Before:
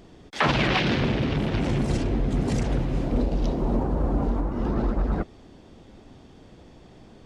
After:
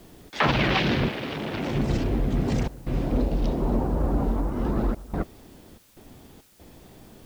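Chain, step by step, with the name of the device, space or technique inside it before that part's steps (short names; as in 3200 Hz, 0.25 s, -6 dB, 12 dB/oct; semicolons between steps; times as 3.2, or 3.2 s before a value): 1.08–1.74 HPF 790 Hz -> 220 Hz 6 dB/oct; worn cassette (LPF 6200 Hz; wow and flutter; level dips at 2.68/4.95/5.78/6.41, 0.183 s -18 dB; white noise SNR 33 dB)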